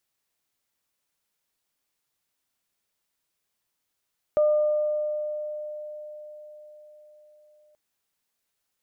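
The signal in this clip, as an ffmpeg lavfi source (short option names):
-f lavfi -i "aevalsrc='0.15*pow(10,-3*t/4.94)*sin(2*PI*603*t)+0.0158*pow(10,-3*t/1.8)*sin(2*PI*1206*t)':d=3.38:s=44100"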